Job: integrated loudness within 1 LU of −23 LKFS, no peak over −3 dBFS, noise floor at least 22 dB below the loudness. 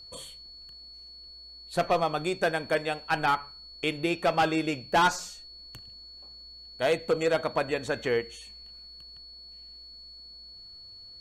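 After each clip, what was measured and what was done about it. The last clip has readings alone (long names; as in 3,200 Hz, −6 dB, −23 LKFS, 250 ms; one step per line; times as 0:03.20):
interfering tone 4,400 Hz; level of the tone −45 dBFS; integrated loudness −28.0 LKFS; sample peak −15.0 dBFS; target loudness −23.0 LKFS
→ notch filter 4,400 Hz, Q 30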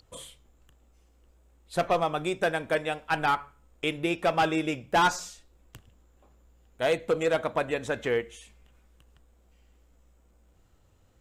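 interfering tone none found; integrated loudness −28.0 LKFS; sample peak −15.5 dBFS; target loudness −23.0 LKFS
→ level +5 dB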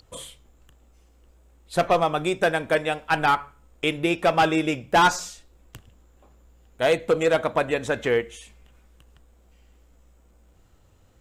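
integrated loudness −23.0 LKFS; sample peak −10.5 dBFS; background noise floor −58 dBFS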